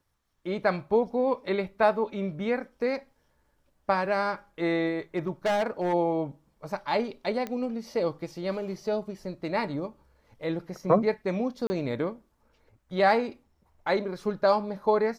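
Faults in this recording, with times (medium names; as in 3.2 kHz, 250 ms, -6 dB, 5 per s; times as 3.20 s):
5.16–5.94 s: clipped -21.5 dBFS
7.47 s: pop -20 dBFS
11.67–11.70 s: dropout 30 ms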